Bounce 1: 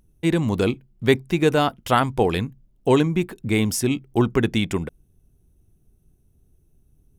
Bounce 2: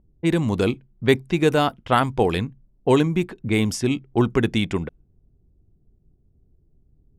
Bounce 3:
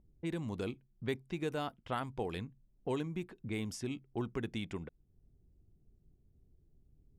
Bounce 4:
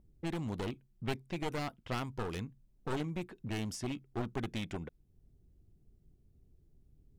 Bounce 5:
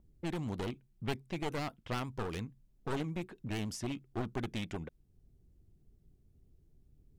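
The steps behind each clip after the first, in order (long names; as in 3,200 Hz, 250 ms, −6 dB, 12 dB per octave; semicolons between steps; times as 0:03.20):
low-pass that shuts in the quiet parts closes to 690 Hz, open at −16.5 dBFS
downward compressor 1.5 to 1, threshold −47 dBFS, peak gain reduction 13 dB; level −7 dB
wavefolder on the positive side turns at −37 dBFS; level +2 dB
pitch vibrato 9.3 Hz 66 cents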